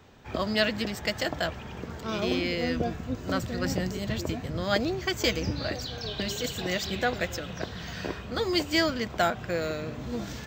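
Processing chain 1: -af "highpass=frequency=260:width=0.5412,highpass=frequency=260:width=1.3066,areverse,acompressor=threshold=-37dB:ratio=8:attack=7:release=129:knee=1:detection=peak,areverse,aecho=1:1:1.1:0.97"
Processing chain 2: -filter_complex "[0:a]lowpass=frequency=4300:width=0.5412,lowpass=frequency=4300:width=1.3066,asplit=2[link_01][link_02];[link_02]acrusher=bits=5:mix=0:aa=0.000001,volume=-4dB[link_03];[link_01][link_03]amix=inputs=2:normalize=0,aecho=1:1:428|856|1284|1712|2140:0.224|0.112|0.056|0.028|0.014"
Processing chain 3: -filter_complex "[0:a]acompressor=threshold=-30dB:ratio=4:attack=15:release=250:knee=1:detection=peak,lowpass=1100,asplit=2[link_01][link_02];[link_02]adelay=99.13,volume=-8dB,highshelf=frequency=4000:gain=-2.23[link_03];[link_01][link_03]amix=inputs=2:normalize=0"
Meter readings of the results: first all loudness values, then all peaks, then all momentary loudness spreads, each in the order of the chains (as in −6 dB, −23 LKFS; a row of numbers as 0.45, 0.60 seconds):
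−38.5, −25.5, −35.0 LKFS; −22.0, −6.5, −17.5 dBFS; 5, 8, 5 LU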